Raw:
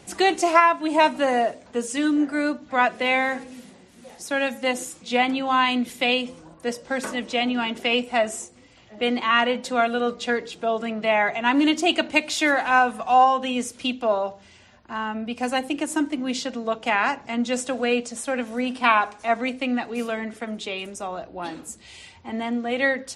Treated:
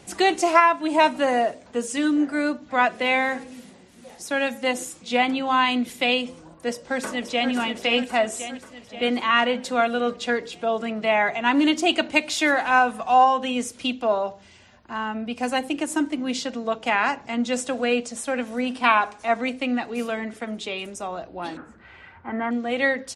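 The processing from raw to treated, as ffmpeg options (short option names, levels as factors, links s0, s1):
-filter_complex "[0:a]asplit=2[s0][s1];[s1]afade=t=in:st=6.69:d=0.01,afade=t=out:st=7.51:d=0.01,aecho=0:1:530|1060|1590|2120|2650|3180|3710|4240:0.473151|0.283891|0.170334|0.102201|0.0613204|0.0367922|0.0220753|0.0132452[s2];[s0][s2]amix=inputs=2:normalize=0,asettb=1/sr,asplit=3[s3][s4][s5];[s3]atrim=end=21.574[s6];[s4]atrim=start=21.57:end=22.51,asetpts=PTS-STARTPTS,afade=t=in:d=0.004:c=qsin,afade=t=out:st=0.936:d=0.004:c=qsin,lowpass=f=1500:t=q:w=4.5[s7];[s5]atrim=start=22.506[s8];[s6][s7]acrossfade=d=0.004:c1=hsin:c2=qsin[s9];[s9][s8]acrossfade=d=0.004:c1=qsin:c2=hsin"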